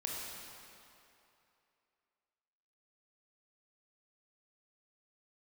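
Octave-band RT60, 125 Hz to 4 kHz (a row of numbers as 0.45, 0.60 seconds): 2.4, 2.4, 2.7, 2.8, 2.6, 2.2 seconds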